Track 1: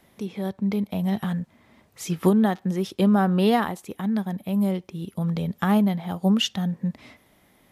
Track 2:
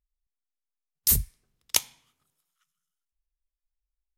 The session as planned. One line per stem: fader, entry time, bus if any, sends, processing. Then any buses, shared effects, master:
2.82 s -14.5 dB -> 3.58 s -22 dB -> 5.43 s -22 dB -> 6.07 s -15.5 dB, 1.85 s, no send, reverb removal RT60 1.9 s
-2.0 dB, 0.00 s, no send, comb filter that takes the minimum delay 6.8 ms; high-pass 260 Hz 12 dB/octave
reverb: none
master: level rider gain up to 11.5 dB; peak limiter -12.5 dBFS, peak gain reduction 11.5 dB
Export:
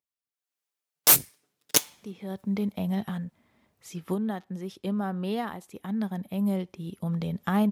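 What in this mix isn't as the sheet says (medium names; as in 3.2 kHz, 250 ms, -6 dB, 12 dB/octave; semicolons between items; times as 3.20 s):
stem 1: missing reverb removal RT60 1.9 s; master: missing peak limiter -12.5 dBFS, peak gain reduction 11.5 dB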